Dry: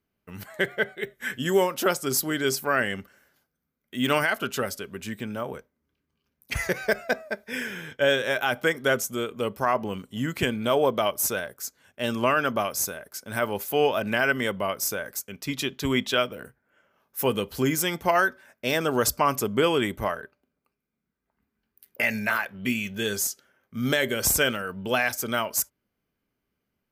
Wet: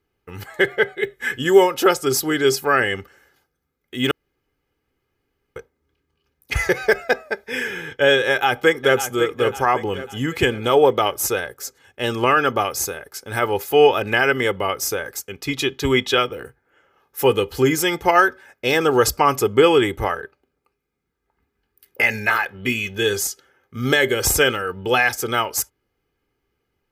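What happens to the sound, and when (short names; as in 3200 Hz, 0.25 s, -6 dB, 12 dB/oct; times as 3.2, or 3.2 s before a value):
4.11–5.56 room tone
8.28–9.03 echo throw 0.55 s, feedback 45%, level -10 dB
whole clip: high shelf 7100 Hz -7.5 dB; comb 2.4 ms, depth 62%; gain +6 dB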